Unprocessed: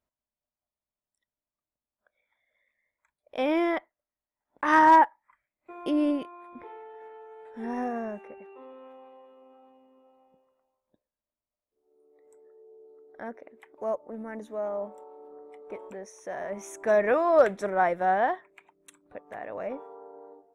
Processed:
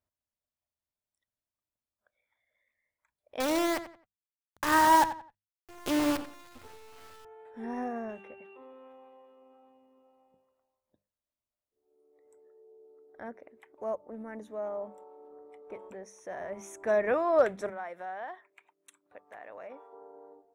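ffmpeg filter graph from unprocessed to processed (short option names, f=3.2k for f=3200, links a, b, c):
-filter_complex "[0:a]asettb=1/sr,asplit=3[a][b][c];[a]atrim=end=3.404[d];[b]atrim=start=3.4:end=7.25,asetpts=PTS-STARTPTS,afade=t=in:d=0.004:c=qsin,afade=t=out:st=3.846:d=0.004:c=qsin,acrusher=bits=5:dc=4:mix=0:aa=0.000001,asplit=2[e][f];[f]adelay=88,lowpass=f=3.4k:p=1,volume=-12dB,asplit=2[g][h];[h]adelay=88,lowpass=f=3.4k:p=1,volume=0.3,asplit=2[i][j];[j]adelay=88,lowpass=f=3.4k:p=1,volume=0.3[k];[e][g][i][k]amix=inputs=4:normalize=0,atrim=end_sample=169785[l];[c]atrim=start=7.246[m];[d][l]acrossfade=d=0.004:c1=hsin:c2=qsin[n];[n][m]acrossfade=d=0.004:c1=qsin:c2=hsin,asettb=1/sr,asplit=3[o][p][q];[o]atrim=end=8.094[r];[p]atrim=start=8.09:end=8.57,asetpts=PTS-STARTPTS,afade=t=in:d=0.004:c=qsin,afade=t=out:st=0.476:d=0.004:c=qsin,equalizer=f=3.3k:t=o:w=0.63:g=12,asplit=2[s][t];[t]adelay=12,volume=-11.5dB[u];[s][u]amix=inputs=2:normalize=0,atrim=end_sample=21168[v];[q]atrim=start=8.566[w];[r][v]acrossfade=d=0.004:c1=hsin:c2=qsin[x];[x][w]acrossfade=d=0.004:c1=qsin:c2=hsin,asettb=1/sr,asplit=3[y][z][aa];[y]atrim=end=17.694[ab];[z]atrim=start=17.69:end=19.93,asetpts=PTS-STARTPTS,afade=t=in:d=0.004:c=qsin,afade=t=out:st=2.236:d=0.004:c=qsin,highpass=f=730:p=1,acompressor=threshold=-38dB:ratio=2:attack=3.2:release=140:knee=1:detection=peak[ac];[aa]atrim=start=19.926[ad];[ab][ac]acrossfade=d=0.004:c1=hsin:c2=qsin[ae];[ae][ad]acrossfade=d=0.004:c1=qsin:c2=hsin,equalizer=f=94:t=o:w=0.58:g=10,bandreject=f=50:t=h:w=6,bandreject=f=100:t=h:w=6,bandreject=f=150:t=h:w=6,bandreject=f=200:t=h:w=6,volume=-4dB"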